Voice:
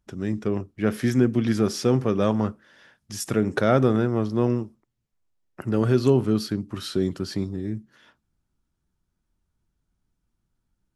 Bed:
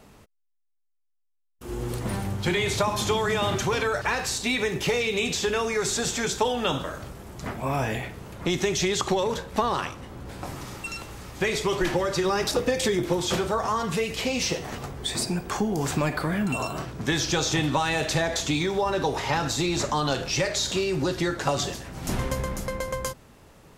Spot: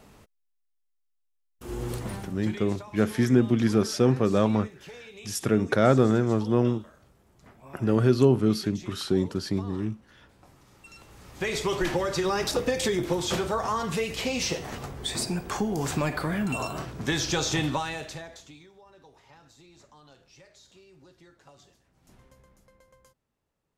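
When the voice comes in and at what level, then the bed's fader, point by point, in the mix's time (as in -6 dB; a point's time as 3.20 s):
2.15 s, -0.5 dB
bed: 1.94 s -1.5 dB
2.76 s -20.5 dB
10.64 s -20.5 dB
11.57 s -2 dB
17.67 s -2 dB
18.74 s -29.5 dB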